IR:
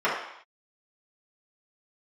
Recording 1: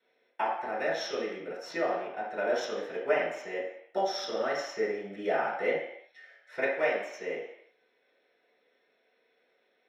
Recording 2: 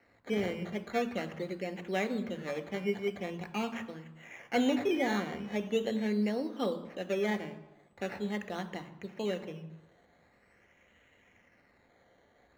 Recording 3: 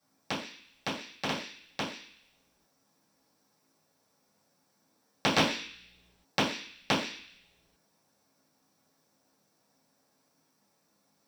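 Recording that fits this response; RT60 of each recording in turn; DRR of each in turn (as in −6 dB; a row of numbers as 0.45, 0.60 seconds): 1; 0.70 s, non-exponential decay, non-exponential decay; −9.5, 8.5, −12.0 decibels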